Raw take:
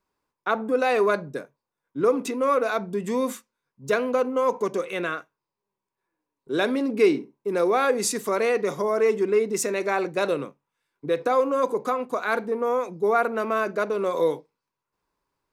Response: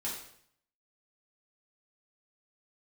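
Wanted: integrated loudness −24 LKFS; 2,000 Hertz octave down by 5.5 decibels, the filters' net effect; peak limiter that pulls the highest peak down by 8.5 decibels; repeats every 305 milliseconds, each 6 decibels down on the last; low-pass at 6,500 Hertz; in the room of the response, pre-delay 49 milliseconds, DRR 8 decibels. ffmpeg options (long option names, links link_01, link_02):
-filter_complex "[0:a]lowpass=6500,equalizer=frequency=2000:width_type=o:gain=-8,alimiter=limit=-18dB:level=0:latency=1,aecho=1:1:305|610|915|1220|1525|1830:0.501|0.251|0.125|0.0626|0.0313|0.0157,asplit=2[link_01][link_02];[1:a]atrim=start_sample=2205,adelay=49[link_03];[link_02][link_03]afir=irnorm=-1:irlink=0,volume=-10.5dB[link_04];[link_01][link_04]amix=inputs=2:normalize=0,volume=2.5dB"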